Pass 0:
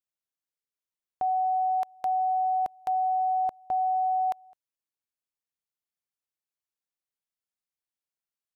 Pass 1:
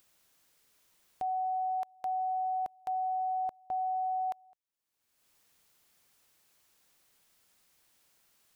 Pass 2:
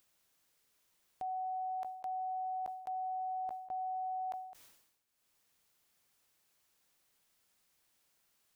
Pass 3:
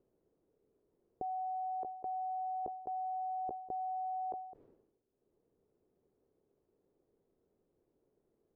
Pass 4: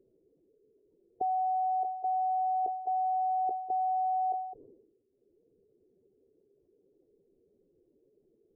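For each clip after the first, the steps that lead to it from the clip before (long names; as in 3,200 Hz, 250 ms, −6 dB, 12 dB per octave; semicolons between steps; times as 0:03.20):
upward compression, threshold −39 dBFS; level −6.5 dB
level that may fall only so fast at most 64 dB per second; level −6 dB
low-pass with resonance 410 Hz, resonance Q 3.5; level +7.5 dB
expanding power law on the bin magnitudes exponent 2.1; level +9 dB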